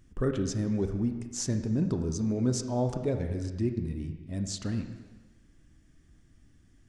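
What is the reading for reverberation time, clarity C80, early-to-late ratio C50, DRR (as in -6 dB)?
1.3 s, 8.5 dB, 7.5 dB, 5.5 dB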